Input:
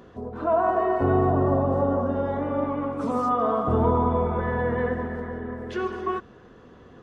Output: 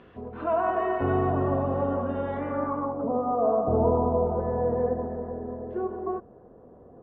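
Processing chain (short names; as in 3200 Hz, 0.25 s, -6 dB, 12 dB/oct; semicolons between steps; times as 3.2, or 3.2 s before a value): low-pass sweep 2700 Hz -> 670 Hz, 2.37–3.05; gain -4 dB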